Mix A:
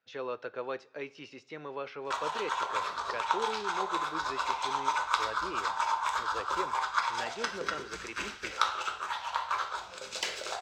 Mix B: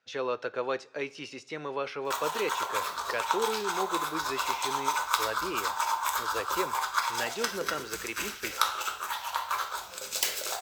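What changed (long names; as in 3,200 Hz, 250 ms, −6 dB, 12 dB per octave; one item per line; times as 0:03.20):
speech +5.0 dB
master: remove high-frequency loss of the air 110 metres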